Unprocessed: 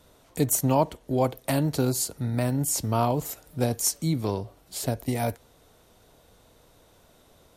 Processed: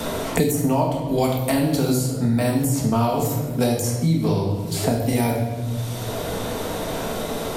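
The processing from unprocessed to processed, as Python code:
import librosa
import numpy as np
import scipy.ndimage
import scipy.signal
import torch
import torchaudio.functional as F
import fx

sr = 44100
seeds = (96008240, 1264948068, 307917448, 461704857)

y = fx.room_shoebox(x, sr, seeds[0], volume_m3=270.0, walls='mixed', distance_m=1.6)
y = fx.band_squash(y, sr, depth_pct=100)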